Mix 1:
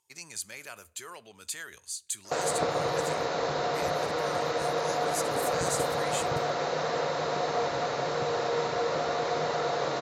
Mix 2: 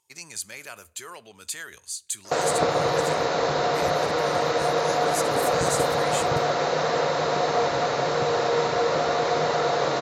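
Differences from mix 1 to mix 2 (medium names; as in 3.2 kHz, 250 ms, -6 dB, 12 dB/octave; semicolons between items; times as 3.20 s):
speech +3.5 dB; background +6.0 dB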